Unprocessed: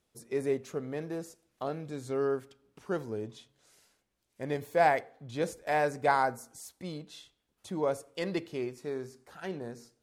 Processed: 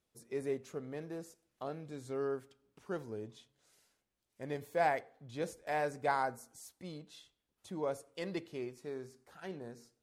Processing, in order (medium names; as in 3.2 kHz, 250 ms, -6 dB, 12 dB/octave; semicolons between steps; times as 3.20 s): trim -6 dB; MP3 64 kbps 44.1 kHz